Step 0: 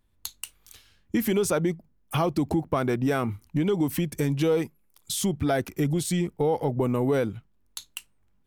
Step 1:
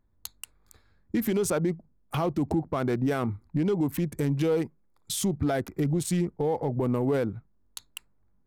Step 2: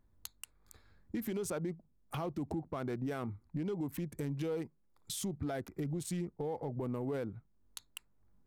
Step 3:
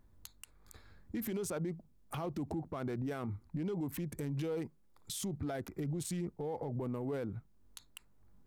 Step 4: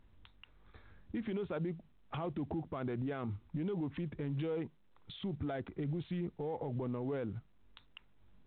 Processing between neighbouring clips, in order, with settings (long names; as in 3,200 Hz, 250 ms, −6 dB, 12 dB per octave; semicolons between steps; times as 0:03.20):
adaptive Wiener filter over 15 samples; brickwall limiter −18.5 dBFS, peak gain reduction 4.5 dB
downward compressor 1.5 to 1, threshold −55 dBFS, peak gain reduction 11.5 dB
brickwall limiter −36.5 dBFS, peak gain reduction 10.5 dB; level +5.5 dB
mu-law 64 kbit/s 8,000 Hz